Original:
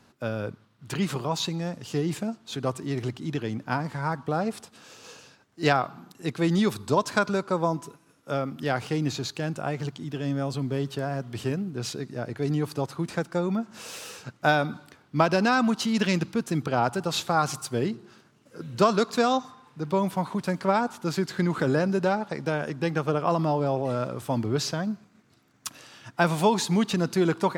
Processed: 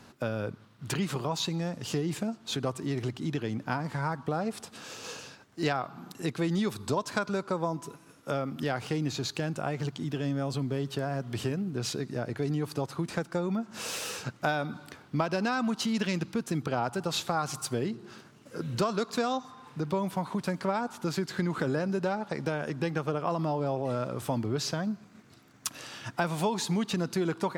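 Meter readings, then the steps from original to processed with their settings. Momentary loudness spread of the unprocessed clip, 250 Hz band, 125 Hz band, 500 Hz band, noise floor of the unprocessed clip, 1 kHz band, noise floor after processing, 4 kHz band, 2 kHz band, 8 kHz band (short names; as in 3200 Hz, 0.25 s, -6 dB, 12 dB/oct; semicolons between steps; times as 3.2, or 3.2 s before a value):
12 LU, -4.0 dB, -3.5 dB, -5.0 dB, -61 dBFS, -6.0 dB, -56 dBFS, -3.0 dB, -5.5 dB, -1.5 dB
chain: compressor 2.5:1, threshold -37 dBFS, peak gain reduction 14.5 dB; gain +5.5 dB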